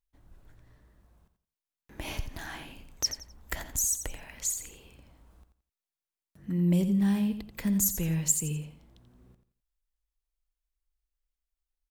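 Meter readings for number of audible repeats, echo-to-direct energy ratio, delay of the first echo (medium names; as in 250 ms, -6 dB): 3, -9.5 dB, 86 ms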